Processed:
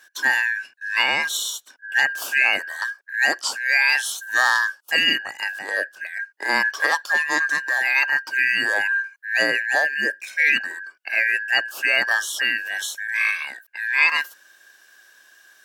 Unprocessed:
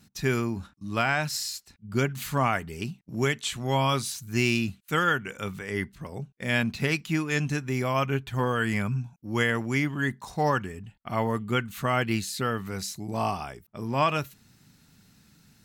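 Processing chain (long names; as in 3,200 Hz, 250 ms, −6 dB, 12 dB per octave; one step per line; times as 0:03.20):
band-splitting scrambler in four parts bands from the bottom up 2143
high-pass filter 440 Hz 12 dB per octave
level +6 dB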